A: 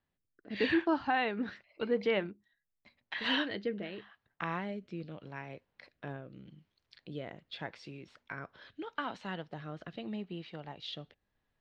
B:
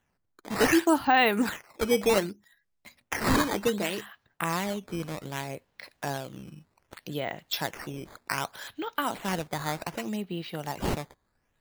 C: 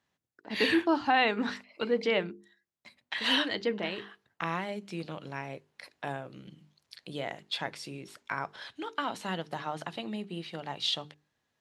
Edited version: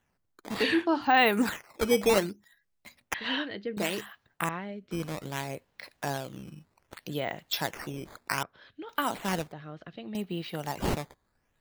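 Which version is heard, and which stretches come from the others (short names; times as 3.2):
B
0.57–1.08 from C, crossfade 0.16 s
3.14–3.77 from A
4.49–4.91 from A
8.43–8.89 from A
9.52–10.15 from A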